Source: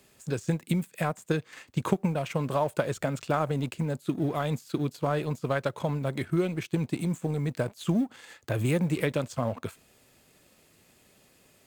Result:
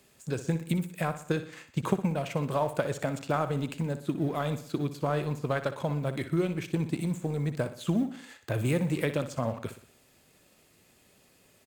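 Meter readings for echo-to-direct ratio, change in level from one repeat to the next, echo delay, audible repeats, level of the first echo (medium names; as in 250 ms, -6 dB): -11.0 dB, -6.0 dB, 61 ms, 4, -12.0 dB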